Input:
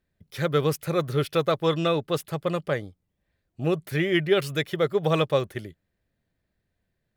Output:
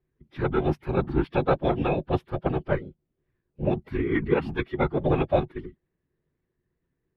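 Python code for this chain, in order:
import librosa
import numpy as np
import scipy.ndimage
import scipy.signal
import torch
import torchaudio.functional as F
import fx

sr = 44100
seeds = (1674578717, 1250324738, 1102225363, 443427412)

y = fx.whisperise(x, sr, seeds[0])
y = fx.small_body(y, sr, hz=(230.0, 560.0), ring_ms=70, db=8)
y = fx.pitch_keep_formants(y, sr, semitones=-7.5)
y = fx.air_absorb(y, sr, metres=400.0)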